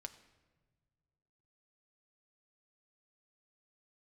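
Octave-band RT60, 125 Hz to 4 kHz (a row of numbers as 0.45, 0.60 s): 2.5, 2.1, 1.6, 1.2, 1.1, 0.85 s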